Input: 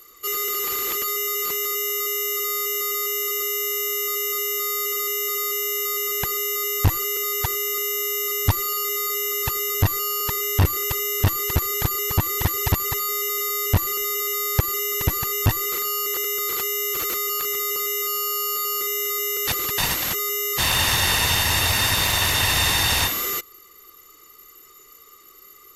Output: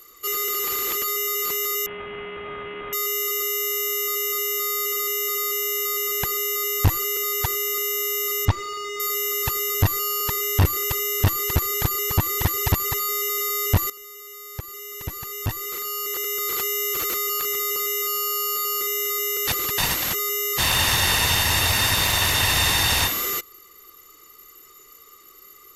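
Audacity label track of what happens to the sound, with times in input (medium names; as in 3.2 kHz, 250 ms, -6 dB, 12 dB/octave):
1.860000	2.930000	CVSD coder 16 kbps
8.450000	9.000000	distance through air 130 m
13.900000	16.590000	fade in quadratic, from -16.5 dB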